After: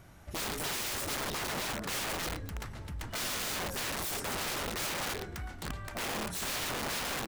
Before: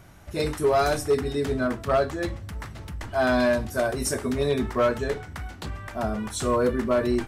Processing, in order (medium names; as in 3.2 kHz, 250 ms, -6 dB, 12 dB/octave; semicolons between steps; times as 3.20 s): frequency-shifting echo 114 ms, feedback 36%, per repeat -36 Hz, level -11 dB; integer overflow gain 25.5 dB; trim -5 dB